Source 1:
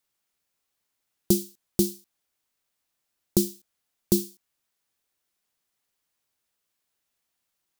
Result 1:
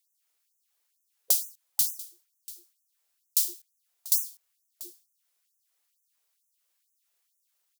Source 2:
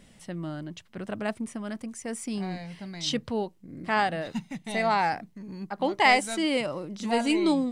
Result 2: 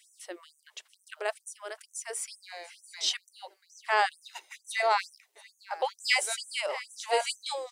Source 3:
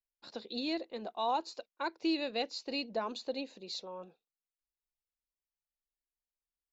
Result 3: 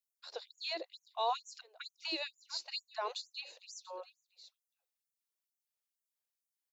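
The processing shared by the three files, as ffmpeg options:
-af "highshelf=f=5700:g=5.5,aecho=1:1:689:0.119,afftfilt=real='re*gte(b*sr/1024,320*pow(5900/320,0.5+0.5*sin(2*PI*2.2*pts/sr)))':imag='im*gte(b*sr/1024,320*pow(5900/320,0.5+0.5*sin(2*PI*2.2*pts/sr)))':win_size=1024:overlap=0.75"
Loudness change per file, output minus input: +0.5 LU, -2.5 LU, -4.0 LU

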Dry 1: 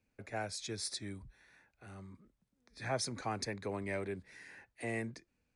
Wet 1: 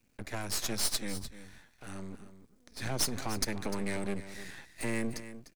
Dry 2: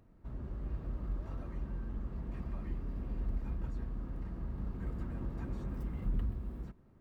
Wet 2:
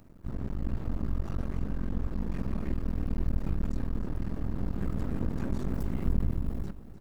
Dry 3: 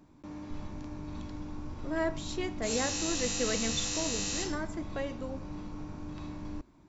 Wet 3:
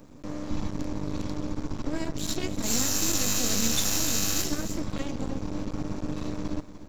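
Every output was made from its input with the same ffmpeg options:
-filter_complex "[0:a]bass=f=250:g=-7,treble=f=4000:g=7,asplit=2[s0][s1];[s1]acompressor=threshold=0.0112:ratio=6,volume=0.841[s2];[s0][s2]amix=inputs=2:normalize=0,lowshelf=f=310:t=q:w=1.5:g=7,acrossover=split=420|3000[s3][s4][s5];[s4]acompressor=threshold=0.00708:ratio=3[s6];[s3][s6][s5]amix=inputs=3:normalize=0,aeval=exprs='max(val(0),0)':c=same,asplit=2[s7][s8];[s8]aecho=0:1:300:0.224[s9];[s7][s9]amix=inputs=2:normalize=0,volume=1.78"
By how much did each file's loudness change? +5.0 LU, +6.5 LU, +5.5 LU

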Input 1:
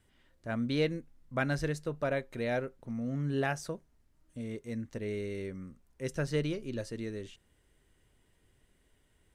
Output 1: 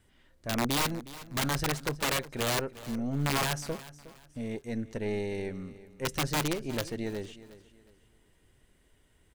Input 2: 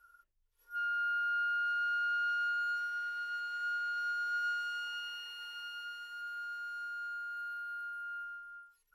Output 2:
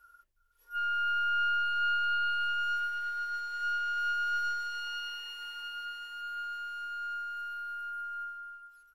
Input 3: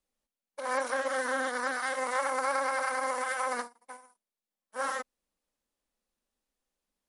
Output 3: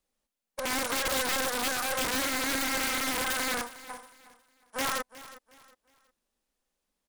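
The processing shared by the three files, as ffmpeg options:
-af "aeval=exprs='0.158*(cos(1*acos(clip(val(0)/0.158,-1,1)))-cos(1*PI/2))+0.0126*(cos(2*acos(clip(val(0)/0.158,-1,1)))-cos(2*PI/2))+0.0158*(cos(5*acos(clip(val(0)/0.158,-1,1)))-cos(5*PI/2))+0.0251*(cos(6*acos(clip(val(0)/0.158,-1,1)))-cos(6*PI/2))':c=same,aeval=exprs='(mod(11.2*val(0)+1,2)-1)/11.2':c=same,aecho=1:1:363|726|1089:0.141|0.0438|0.0136"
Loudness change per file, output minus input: +3.0 LU, +3.5 LU, +2.5 LU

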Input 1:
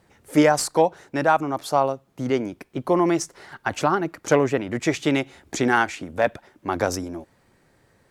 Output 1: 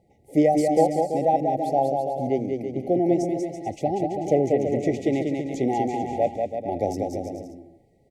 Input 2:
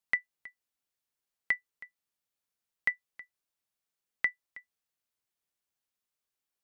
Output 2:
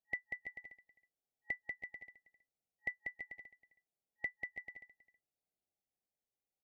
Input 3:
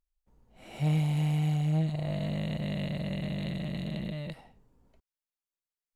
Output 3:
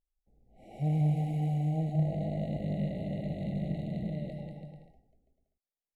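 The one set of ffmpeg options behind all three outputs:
-af "highshelf=f=1800:t=q:w=1.5:g=-10.5,aecho=1:1:190|332.5|439.4|519.5|579.6:0.631|0.398|0.251|0.158|0.1,afftfilt=real='re*(1-between(b*sr/4096,840,1900))':imag='im*(1-between(b*sr/4096,840,1900))':win_size=4096:overlap=0.75,volume=0.75"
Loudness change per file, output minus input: -1.0 LU, -11.5 LU, -1.5 LU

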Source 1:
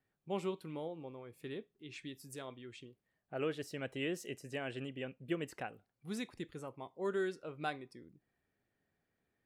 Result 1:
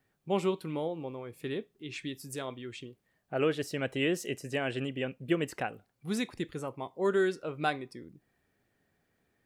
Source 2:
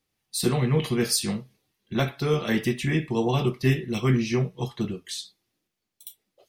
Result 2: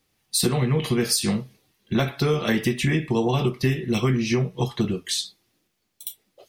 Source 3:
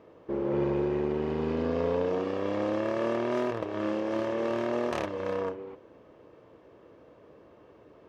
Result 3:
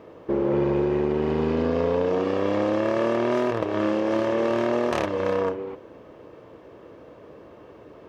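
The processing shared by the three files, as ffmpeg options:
-af "acompressor=threshold=0.0447:ratio=6,volume=2.66"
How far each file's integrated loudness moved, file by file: +8.5 LU, +2.5 LU, +6.0 LU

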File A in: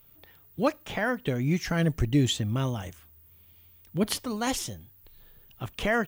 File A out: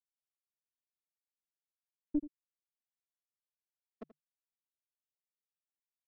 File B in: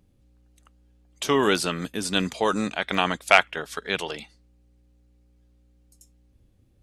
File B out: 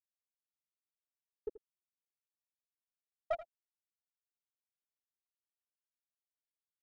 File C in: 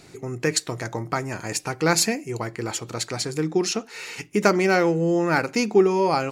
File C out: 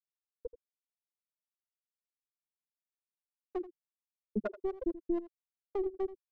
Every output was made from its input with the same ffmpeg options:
-filter_complex "[0:a]afftfilt=real='re*gte(hypot(re,im),1.12)':imag='im*gte(hypot(re,im),1.12)':win_size=1024:overlap=0.75,highshelf=f=9300:g=-10,aecho=1:1:3.5:0.37,adynamicequalizer=threshold=0.00141:dfrequency=150:dqfactor=6.7:tfrequency=150:tqfactor=6.7:attack=5:release=100:ratio=0.375:range=2.5:mode=boostabove:tftype=bell,acompressor=threshold=0.0355:ratio=3,alimiter=level_in=1.58:limit=0.0631:level=0:latency=1:release=426,volume=0.631,aeval=exprs='clip(val(0),-1,0.015)':c=same,adynamicsmooth=sensitivity=2.5:basefreq=6100,acrossover=split=440[s0][s1];[s0]aeval=exprs='val(0)*(1-1/2+1/2*cos(2*PI*4.1*n/s))':c=same[s2];[s1]aeval=exprs='val(0)*(1-1/2-1/2*cos(2*PI*4.1*n/s))':c=same[s3];[s2][s3]amix=inputs=2:normalize=0,aecho=1:1:82:0.168,volume=2.66"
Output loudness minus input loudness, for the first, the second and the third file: -10.5 LU, -19.5 LU, -15.0 LU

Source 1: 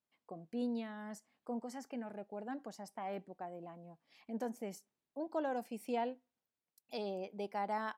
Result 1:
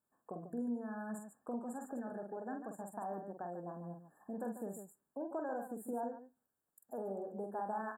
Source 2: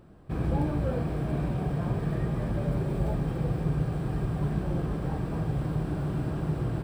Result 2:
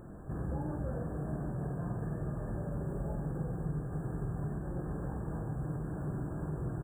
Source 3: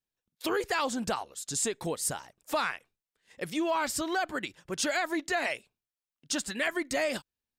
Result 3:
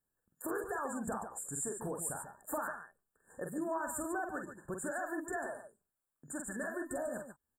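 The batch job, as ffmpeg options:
-filter_complex "[0:a]acompressor=threshold=0.00447:ratio=2.5,afftfilt=real='re*(1-between(b*sr/4096,1800,7000))':imag='im*(1-between(b*sr/4096,1800,7000))':win_size=4096:overlap=0.75,asplit=2[s0][s1];[s1]aecho=0:1:46|140|145:0.531|0.141|0.335[s2];[s0][s2]amix=inputs=2:normalize=0,volume=1.68"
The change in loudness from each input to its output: -1.0 LU, -8.0 LU, -8.0 LU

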